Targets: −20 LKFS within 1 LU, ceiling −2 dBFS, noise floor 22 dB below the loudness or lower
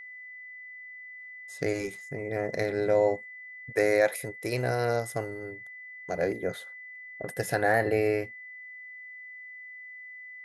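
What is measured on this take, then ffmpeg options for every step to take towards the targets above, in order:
interfering tone 2,000 Hz; level of the tone −42 dBFS; integrated loudness −29.0 LKFS; sample peak −11.5 dBFS; target loudness −20.0 LKFS
→ -af "bandreject=frequency=2000:width=30"
-af "volume=9dB"

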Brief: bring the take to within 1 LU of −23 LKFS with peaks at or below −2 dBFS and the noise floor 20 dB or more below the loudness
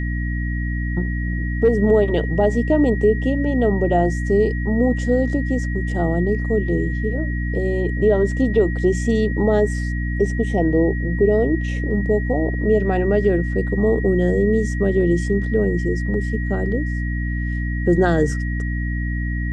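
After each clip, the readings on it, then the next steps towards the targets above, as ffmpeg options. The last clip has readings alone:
mains hum 60 Hz; hum harmonics up to 300 Hz; level of the hum −20 dBFS; interfering tone 1,900 Hz; level of the tone −31 dBFS; integrated loudness −20.0 LKFS; sample peak −4.5 dBFS; target loudness −23.0 LKFS
→ -af "bandreject=frequency=60:width_type=h:width=4,bandreject=frequency=120:width_type=h:width=4,bandreject=frequency=180:width_type=h:width=4,bandreject=frequency=240:width_type=h:width=4,bandreject=frequency=300:width_type=h:width=4"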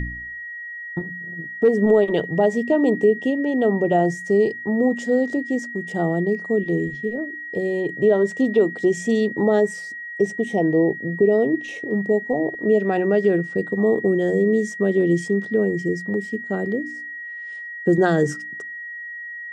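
mains hum none found; interfering tone 1,900 Hz; level of the tone −31 dBFS
→ -af "bandreject=frequency=1900:width=30"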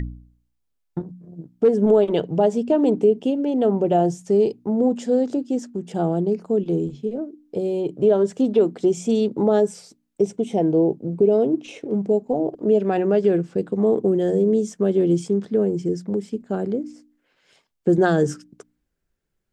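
interfering tone none found; integrated loudness −21.0 LKFS; sample peak −6.5 dBFS; target loudness −23.0 LKFS
→ -af "volume=-2dB"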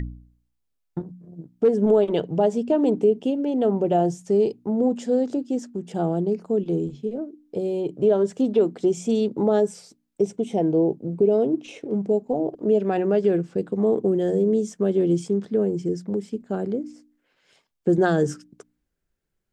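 integrated loudness −23.0 LKFS; sample peak −8.5 dBFS; background noise floor −75 dBFS

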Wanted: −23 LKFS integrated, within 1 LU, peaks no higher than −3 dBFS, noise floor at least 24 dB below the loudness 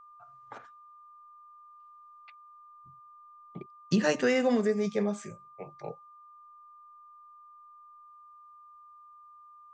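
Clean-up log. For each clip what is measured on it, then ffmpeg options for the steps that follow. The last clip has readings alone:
interfering tone 1,200 Hz; level of the tone −51 dBFS; integrated loudness −29.0 LKFS; sample peak −13.5 dBFS; target loudness −23.0 LKFS
→ -af "bandreject=frequency=1200:width=30"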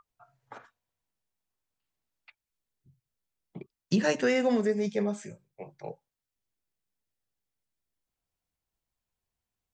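interfering tone none found; integrated loudness −28.0 LKFS; sample peak −14.0 dBFS; target loudness −23.0 LKFS
→ -af "volume=5dB"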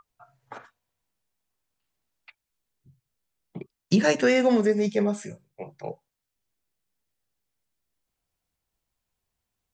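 integrated loudness −23.0 LKFS; sample peak −9.0 dBFS; background noise floor −84 dBFS

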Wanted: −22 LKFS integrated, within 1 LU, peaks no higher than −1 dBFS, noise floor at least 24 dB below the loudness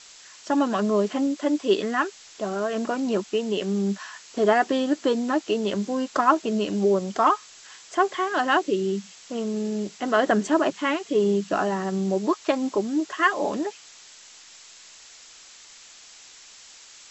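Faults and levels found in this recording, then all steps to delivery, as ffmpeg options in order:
background noise floor −48 dBFS; target noise floor −49 dBFS; integrated loudness −24.5 LKFS; sample peak −6.0 dBFS; target loudness −22.0 LKFS
→ -af "afftdn=noise_reduction=6:noise_floor=-48"
-af "volume=2.5dB"

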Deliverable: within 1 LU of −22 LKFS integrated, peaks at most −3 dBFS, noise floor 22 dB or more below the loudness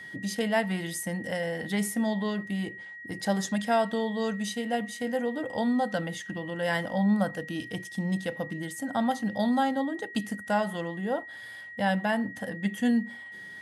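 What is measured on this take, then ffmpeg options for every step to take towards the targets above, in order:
interfering tone 1,900 Hz; level of the tone −41 dBFS; integrated loudness −29.5 LKFS; sample peak −13.0 dBFS; target loudness −22.0 LKFS
→ -af "bandreject=frequency=1900:width=30"
-af "volume=7.5dB"

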